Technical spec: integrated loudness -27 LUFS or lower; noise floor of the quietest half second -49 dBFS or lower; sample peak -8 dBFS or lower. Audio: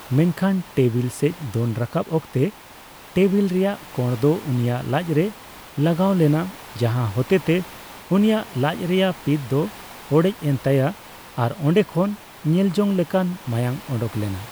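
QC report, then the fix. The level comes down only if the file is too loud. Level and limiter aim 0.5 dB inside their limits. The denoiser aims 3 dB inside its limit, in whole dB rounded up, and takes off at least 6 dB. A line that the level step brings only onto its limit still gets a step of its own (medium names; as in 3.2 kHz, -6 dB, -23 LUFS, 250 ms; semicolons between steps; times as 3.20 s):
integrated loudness -22.0 LUFS: fail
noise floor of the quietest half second -43 dBFS: fail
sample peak -5.5 dBFS: fail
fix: noise reduction 6 dB, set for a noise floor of -43 dBFS; trim -5.5 dB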